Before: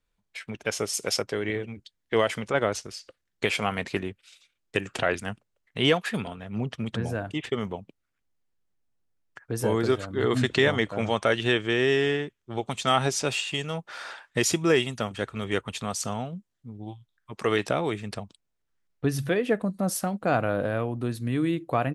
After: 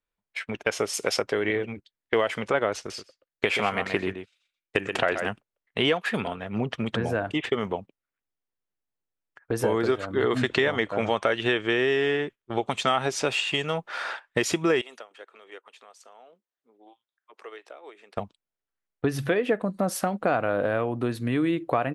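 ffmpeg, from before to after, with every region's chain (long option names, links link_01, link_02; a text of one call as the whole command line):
ffmpeg -i in.wav -filter_complex "[0:a]asettb=1/sr,asplit=3[link_01][link_02][link_03];[link_01]atrim=end=2.774[link_04];[link_02]atrim=start=2.77:end=5.28,asetpts=PTS-STARTPTS,afade=type=in:duration=0.004:curve=qsin,afade=type=out:start_time=2.506:duration=0.004:curve=qsin,agate=range=-7dB:threshold=-50dB:ratio=16:release=100:detection=peak,aecho=1:1:128:0.335,atrim=end_sample=110691[link_05];[link_03]atrim=start=5.276[link_06];[link_04][link_05]acrossfade=duration=0.004:curve1=hsin:curve2=qsin[link_07];[link_07][link_06]acrossfade=duration=0.004:curve1=qsin:curve2=hsin,asettb=1/sr,asplit=3[link_08][link_09][link_10];[link_08]atrim=end=14.814[link_11];[link_09]atrim=start=14.81:end=18.17,asetpts=PTS-STARTPTS,afade=type=in:duration=0.004:curve=qsin,afade=type=out:start_time=3.356:duration=0.004:curve=qsin,highpass=frequency=370:width=0.5412,highpass=frequency=370:width=1.3066,acompressor=threshold=-40dB:ratio=8:attack=3.2:release=140:knee=1:detection=peak[link_12];[link_10]atrim=start=18.166[link_13];[link_11][link_12]acrossfade=duration=0.004:curve1=hsin:curve2=qsin[link_14];[link_14][link_13]acrossfade=duration=0.004:curve1=qsin:curve2=hsin,agate=range=-13dB:threshold=-41dB:ratio=16:detection=peak,bass=frequency=250:gain=-8,treble=frequency=4000:gain=-9,acompressor=threshold=-29dB:ratio=3,volume=7.5dB" out.wav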